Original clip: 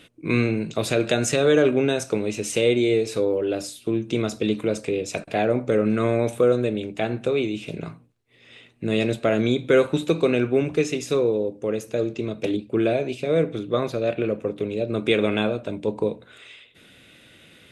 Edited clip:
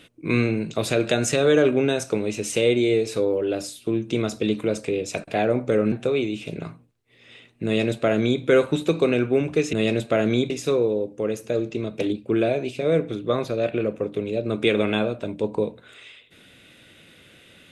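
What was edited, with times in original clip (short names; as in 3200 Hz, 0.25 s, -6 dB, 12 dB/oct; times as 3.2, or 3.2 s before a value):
5.92–7.13 cut
8.86–9.63 copy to 10.94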